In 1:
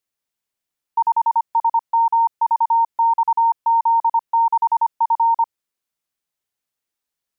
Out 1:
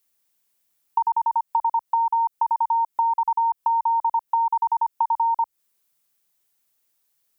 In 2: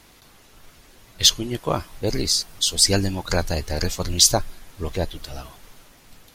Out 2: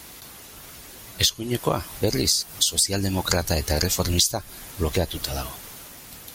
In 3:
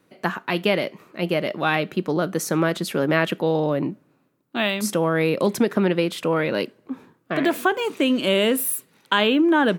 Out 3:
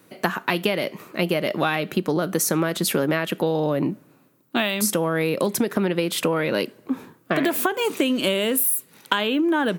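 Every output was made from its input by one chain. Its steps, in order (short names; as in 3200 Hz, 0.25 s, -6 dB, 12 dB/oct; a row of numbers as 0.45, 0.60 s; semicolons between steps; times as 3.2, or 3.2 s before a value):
HPF 47 Hz; high shelf 8200 Hz +11.5 dB; compressor 16:1, threshold -24 dBFS; match loudness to -23 LUFS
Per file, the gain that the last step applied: +5.0, +6.5, +6.5 dB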